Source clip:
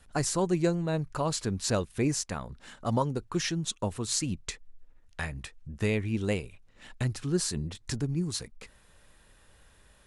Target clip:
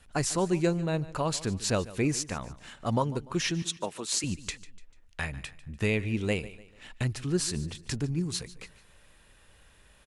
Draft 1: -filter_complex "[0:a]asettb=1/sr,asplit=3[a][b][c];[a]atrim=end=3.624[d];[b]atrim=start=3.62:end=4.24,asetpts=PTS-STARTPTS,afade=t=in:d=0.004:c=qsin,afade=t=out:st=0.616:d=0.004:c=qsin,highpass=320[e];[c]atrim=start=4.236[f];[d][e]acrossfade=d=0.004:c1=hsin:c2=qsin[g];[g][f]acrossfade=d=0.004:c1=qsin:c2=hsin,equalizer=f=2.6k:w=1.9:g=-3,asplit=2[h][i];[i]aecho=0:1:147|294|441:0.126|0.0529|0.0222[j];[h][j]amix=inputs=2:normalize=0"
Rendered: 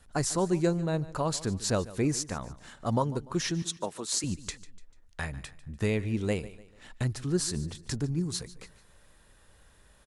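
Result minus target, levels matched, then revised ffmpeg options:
2000 Hz band -3.5 dB
-filter_complex "[0:a]asettb=1/sr,asplit=3[a][b][c];[a]atrim=end=3.624[d];[b]atrim=start=3.62:end=4.24,asetpts=PTS-STARTPTS,afade=t=in:d=0.004:c=qsin,afade=t=out:st=0.616:d=0.004:c=qsin,highpass=320[e];[c]atrim=start=4.236[f];[d][e]acrossfade=d=0.004:c1=hsin:c2=qsin[g];[g][f]acrossfade=d=0.004:c1=qsin:c2=hsin,equalizer=f=2.6k:w=1.9:g=4.5,asplit=2[h][i];[i]aecho=0:1:147|294|441:0.126|0.0529|0.0222[j];[h][j]amix=inputs=2:normalize=0"

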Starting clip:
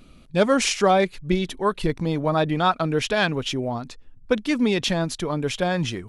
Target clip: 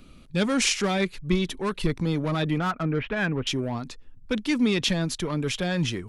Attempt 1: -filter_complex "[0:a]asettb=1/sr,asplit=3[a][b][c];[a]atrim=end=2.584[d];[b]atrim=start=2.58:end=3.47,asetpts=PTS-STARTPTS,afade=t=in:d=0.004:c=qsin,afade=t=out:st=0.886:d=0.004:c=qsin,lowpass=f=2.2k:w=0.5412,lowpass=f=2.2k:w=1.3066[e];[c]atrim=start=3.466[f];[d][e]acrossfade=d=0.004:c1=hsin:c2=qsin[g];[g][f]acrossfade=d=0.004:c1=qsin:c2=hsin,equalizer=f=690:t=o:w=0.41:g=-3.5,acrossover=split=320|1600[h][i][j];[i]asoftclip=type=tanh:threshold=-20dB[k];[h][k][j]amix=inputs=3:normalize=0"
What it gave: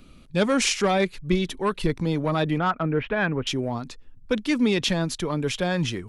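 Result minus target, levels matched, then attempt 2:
soft clip: distortion -7 dB
-filter_complex "[0:a]asettb=1/sr,asplit=3[a][b][c];[a]atrim=end=2.584[d];[b]atrim=start=2.58:end=3.47,asetpts=PTS-STARTPTS,afade=t=in:d=0.004:c=qsin,afade=t=out:st=0.886:d=0.004:c=qsin,lowpass=f=2.2k:w=0.5412,lowpass=f=2.2k:w=1.3066[e];[c]atrim=start=3.466[f];[d][e]acrossfade=d=0.004:c1=hsin:c2=qsin[g];[g][f]acrossfade=d=0.004:c1=qsin:c2=hsin,equalizer=f=690:t=o:w=0.41:g=-3.5,acrossover=split=320|1600[h][i][j];[i]asoftclip=type=tanh:threshold=-30dB[k];[h][k][j]amix=inputs=3:normalize=0"

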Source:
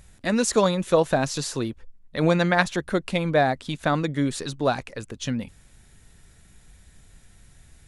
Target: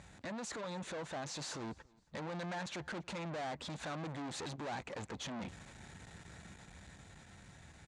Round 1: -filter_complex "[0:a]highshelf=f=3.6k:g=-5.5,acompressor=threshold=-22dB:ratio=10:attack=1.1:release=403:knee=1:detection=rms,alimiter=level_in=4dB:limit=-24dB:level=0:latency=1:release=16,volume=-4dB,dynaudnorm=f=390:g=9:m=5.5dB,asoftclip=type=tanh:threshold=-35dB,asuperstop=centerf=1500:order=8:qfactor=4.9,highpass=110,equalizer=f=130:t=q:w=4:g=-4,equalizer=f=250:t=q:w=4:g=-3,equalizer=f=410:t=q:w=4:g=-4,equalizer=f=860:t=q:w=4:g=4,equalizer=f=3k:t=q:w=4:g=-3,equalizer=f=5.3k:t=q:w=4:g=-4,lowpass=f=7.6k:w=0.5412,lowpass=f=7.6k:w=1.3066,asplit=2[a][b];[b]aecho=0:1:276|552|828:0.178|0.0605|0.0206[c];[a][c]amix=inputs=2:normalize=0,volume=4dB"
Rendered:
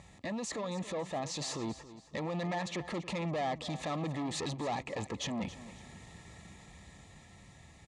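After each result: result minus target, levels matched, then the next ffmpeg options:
echo-to-direct +11.5 dB; 2000 Hz band -4.0 dB; soft clip: distortion -4 dB
-filter_complex "[0:a]highshelf=f=3.6k:g=-5.5,acompressor=threshold=-22dB:ratio=10:attack=1.1:release=403:knee=1:detection=rms,alimiter=level_in=4dB:limit=-24dB:level=0:latency=1:release=16,volume=-4dB,dynaudnorm=f=390:g=9:m=5.5dB,asoftclip=type=tanh:threshold=-35dB,asuperstop=centerf=1500:order=8:qfactor=4.9,highpass=110,equalizer=f=130:t=q:w=4:g=-4,equalizer=f=250:t=q:w=4:g=-3,equalizer=f=410:t=q:w=4:g=-4,equalizer=f=860:t=q:w=4:g=4,equalizer=f=3k:t=q:w=4:g=-3,equalizer=f=5.3k:t=q:w=4:g=-4,lowpass=f=7.6k:w=0.5412,lowpass=f=7.6k:w=1.3066,asplit=2[a][b];[b]aecho=0:1:276|552:0.0473|0.0161[c];[a][c]amix=inputs=2:normalize=0,volume=4dB"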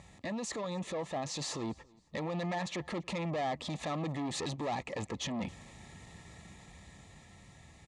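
2000 Hz band -4.0 dB; soft clip: distortion -4 dB
-filter_complex "[0:a]highshelf=f=3.6k:g=-5.5,acompressor=threshold=-22dB:ratio=10:attack=1.1:release=403:knee=1:detection=rms,alimiter=level_in=4dB:limit=-24dB:level=0:latency=1:release=16,volume=-4dB,dynaudnorm=f=390:g=9:m=5.5dB,asoftclip=type=tanh:threshold=-35dB,highpass=110,equalizer=f=130:t=q:w=4:g=-4,equalizer=f=250:t=q:w=4:g=-3,equalizer=f=410:t=q:w=4:g=-4,equalizer=f=860:t=q:w=4:g=4,equalizer=f=3k:t=q:w=4:g=-3,equalizer=f=5.3k:t=q:w=4:g=-4,lowpass=f=7.6k:w=0.5412,lowpass=f=7.6k:w=1.3066,asplit=2[a][b];[b]aecho=0:1:276|552:0.0473|0.0161[c];[a][c]amix=inputs=2:normalize=0,volume=4dB"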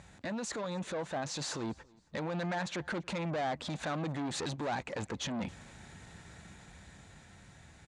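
soft clip: distortion -4 dB
-filter_complex "[0:a]highshelf=f=3.6k:g=-5.5,acompressor=threshold=-22dB:ratio=10:attack=1.1:release=403:knee=1:detection=rms,alimiter=level_in=4dB:limit=-24dB:level=0:latency=1:release=16,volume=-4dB,dynaudnorm=f=390:g=9:m=5.5dB,asoftclip=type=tanh:threshold=-43dB,highpass=110,equalizer=f=130:t=q:w=4:g=-4,equalizer=f=250:t=q:w=4:g=-3,equalizer=f=410:t=q:w=4:g=-4,equalizer=f=860:t=q:w=4:g=4,equalizer=f=3k:t=q:w=4:g=-3,equalizer=f=5.3k:t=q:w=4:g=-4,lowpass=f=7.6k:w=0.5412,lowpass=f=7.6k:w=1.3066,asplit=2[a][b];[b]aecho=0:1:276|552:0.0473|0.0161[c];[a][c]amix=inputs=2:normalize=0,volume=4dB"

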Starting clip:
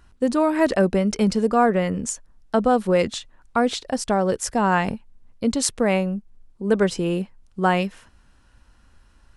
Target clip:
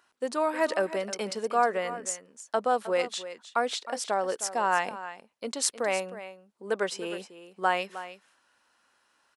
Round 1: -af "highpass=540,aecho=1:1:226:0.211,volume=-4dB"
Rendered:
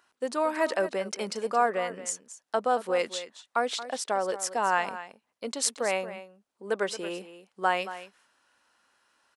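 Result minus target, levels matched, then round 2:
echo 85 ms early
-af "highpass=540,aecho=1:1:311:0.211,volume=-4dB"

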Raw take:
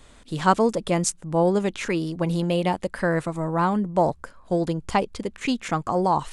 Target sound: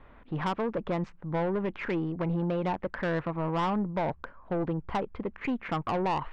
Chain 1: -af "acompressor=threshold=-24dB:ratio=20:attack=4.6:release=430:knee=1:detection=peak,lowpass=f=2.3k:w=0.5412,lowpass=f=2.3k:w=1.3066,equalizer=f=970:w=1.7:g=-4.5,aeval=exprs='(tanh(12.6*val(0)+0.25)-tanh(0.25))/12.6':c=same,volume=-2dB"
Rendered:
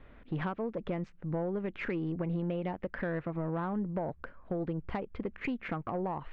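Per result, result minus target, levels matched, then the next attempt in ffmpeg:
compressor: peak gain reduction +6 dB; 1000 Hz band -4.0 dB
-af "acompressor=threshold=-17.5dB:ratio=20:attack=4.6:release=430:knee=1:detection=peak,lowpass=f=2.3k:w=0.5412,lowpass=f=2.3k:w=1.3066,equalizer=f=970:w=1.7:g=-4.5,aeval=exprs='(tanh(12.6*val(0)+0.25)-tanh(0.25))/12.6':c=same,volume=-2dB"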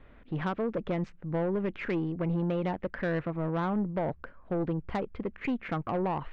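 1000 Hz band -3.5 dB
-af "acompressor=threshold=-17.5dB:ratio=20:attack=4.6:release=430:knee=1:detection=peak,lowpass=f=2.3k:w=0.5412,lowpass=f=2.3k:w=1.3066,equalizer=f=970:w=1.7:g=4,aeval=exprs='(tanh(12.6*val(0)+0.25)-tanh(0.25))/12.6':c=same,volume=-2dB"

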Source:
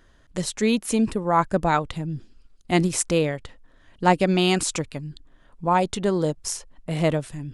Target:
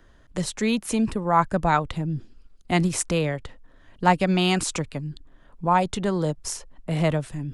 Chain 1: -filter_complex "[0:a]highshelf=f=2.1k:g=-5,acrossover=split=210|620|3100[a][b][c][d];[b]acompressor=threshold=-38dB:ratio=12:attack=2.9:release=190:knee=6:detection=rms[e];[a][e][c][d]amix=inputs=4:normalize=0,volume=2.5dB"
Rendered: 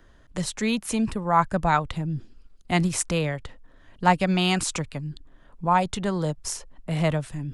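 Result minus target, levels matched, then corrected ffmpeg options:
compressor: peak gain reduction +8 dB
-filter_complex "[0:a]highshelf=f=2.1k:g=-5,acrossover=split=210|620|3100[a][b][c][d];[b]acompressor=threshold=-29.5dB:ratio=12:attack=2.9:release=190:knee=6:detection=rms[e];[a][e][c][d]amix=inputs=4:normalize=0,volume=2.5dB"

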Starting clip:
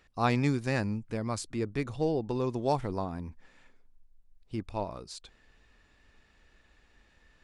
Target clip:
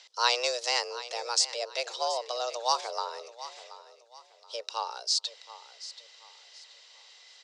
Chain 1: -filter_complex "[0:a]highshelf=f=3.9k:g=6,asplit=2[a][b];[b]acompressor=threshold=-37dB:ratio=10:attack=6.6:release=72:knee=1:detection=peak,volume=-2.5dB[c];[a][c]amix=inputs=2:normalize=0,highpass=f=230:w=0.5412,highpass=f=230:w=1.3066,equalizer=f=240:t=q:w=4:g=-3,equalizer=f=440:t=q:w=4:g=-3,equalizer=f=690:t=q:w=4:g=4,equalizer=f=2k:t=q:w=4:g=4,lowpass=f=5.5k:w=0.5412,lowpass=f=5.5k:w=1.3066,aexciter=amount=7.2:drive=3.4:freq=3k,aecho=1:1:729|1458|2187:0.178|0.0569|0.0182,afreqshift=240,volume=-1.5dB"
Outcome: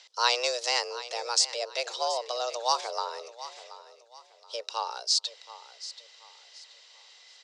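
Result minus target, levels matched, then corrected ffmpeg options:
compressor: peak gain reduction -7.5 dB
-filter_complex "[0:a]highshelf=f=3.9k:g=6,asplit=2[a][b];[b]acompressor=threshold=-45.5dB:ratio=10:attack=6.6:release=72:knee=1:detection=peak,volume=-2.5dB[c];[a][c]amix=inputs=2:normalize=0,highpass=f=230:w=0.5412,highpass=f=230:w=1.3066,equalizer=f=240:t=q:w=4:g=-3,equalizer=f=440:t=q:w=4:g=-3,equalizer=f=690:t=q:w=4:g=4,equalizer=f=2k:t=q:w=4:g=4,lowpass=f=5.5k:w=0.5412,lowpass=f=5.5k:w=1.3066,aexciter=amount=7.2:drive=3.4:freq=3k,aecho=1:1:729|1458|2187:0.178|0.0569|0.0182,afreqshift=240,volume=-1.5dB"

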